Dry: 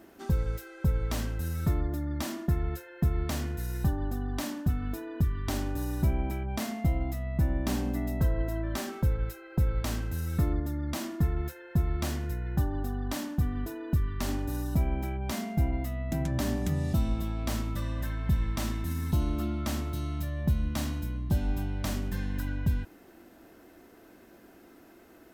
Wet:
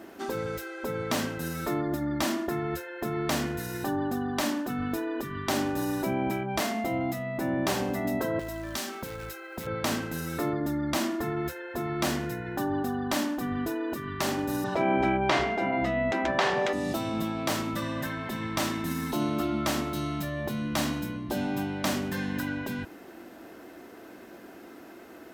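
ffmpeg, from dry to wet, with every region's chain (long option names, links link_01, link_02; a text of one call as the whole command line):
ffmpeg -i in.wav -filter_complex "[0:a]asettb=1/sr,asplit=3[link_01][link_02][link_03];[link_01]atrim=end=8.394[link_04];[link_02]atrim=start=8.39:end=9.67,asetpts=PTS-STARTPTS,afade=type=in:duration=0.004:curve=qsin,afade=type=out:start_time=1.276:duration=0.004:curve=qsin,lowshelf=frequency=430:gain=-9,acrossover=split=230|3000[link_05][link_06][link_07];[link_06]acompressor=threshold=-46dB:ratio=2.5:attack=3.2:release=140:knee=2.83:detection=peak[link_08];[link_05][link_08][link_07]amix=inputs=3:normalize=0,acrusher=bits=5:mode=log:mix=0:aa=0.000001[link_09];[link_03]atrim=start=9.666[link_10];[link_04][link_09]acrossfade=duration=0.004:curve1=hsin:curve2=qsin[link_11];[link_11][link_10]acrossfade=duration=0.004:curve1=qsin:curve2=hsin,asettb=1/sr,asplit=3[link_12][link_13][link_14];[link_12]atrim=end=14.644[link_15];[link_13]atrim=start=14.64:end=16.73,asetpts=PTS-STARTPTS,afade=type=in:duration=0.004:curve=qsin,afade=type=out:start_time=2.086:duration=0.004:curve=qsin,lowpass=3300,bandreject=frequency=64.72:width_type=h:width=4,bandreject=frequency=129.44:width_type=h:width=4,bandreject=frequency=194.16:width_type=h:width=4,bandreject=frequency=258.88:width_type=h:width=4,bandreject=frequency=323.6:width_type=h:width=4,bandreject=frequency=388.32:width_type=h:width=4,bandreject=frequency=453.04:width_type=h:width=4,bandreject=frequency=517.76:width_type=h:width=4,bandreject=frequency=582.48:width_type=h:width=4,bandreject=frequency=647.2:width_type=h:width=4,bandreject=frequency=711.92:width_type=h:width=4,bandreject=frequency=776.64:width_type=h:width=4,bandreject=frequency=841.36:width_type=h:width=4,bandreject=frequency=906.08:width_type=h:width=4,bandreject=frequency=970.8:width_type=h:width=4,bandreject=frequency=1035.52:width_type=h:width=4,bandreject=frequency=1100.24:width_type=h:width=4,bandreject=frequency=1164.96:width_type=h:width=4,bandreject=frequency=1229.68:width_type=h:width=4,bandreject=frequency=1294.4:width_type=h:width=4,bandreject=frequency=1359.12:width_type=h:width=4,bandreject=frequency=1423.84:width_type=h:width=4,bandreject=frequency=1488.56:width_type=h:width=4,bandreject=frequency=1553.28:width_type=h:width=4,bandreject=frequency=1618:width_type=h:width=4,bandreject=frequency=1682.72:width_type=h:width=4,bandreject=frequency=1747.44:width_type=h:width=4,acontrast=80[link_16];[link_14]atrim=start=16.726[link_17];[link_15][link_16]acrossfade=duration=0.004:curve1=hsin:curve2=qsin[link_18];[link_18][link_17]acrossfade=duration=0.004:curve1=qsin:curve2=hsin,afftfilt=real='re*lt(hypot(re,im),0.2)':imag='im*lt(hypot(re,im),0.2)':win_size=1024:overlap=0.75,highpass=frequency=210:poles=1,highshelf=frequency=6200:gain=-6,volume=9dB" out.wav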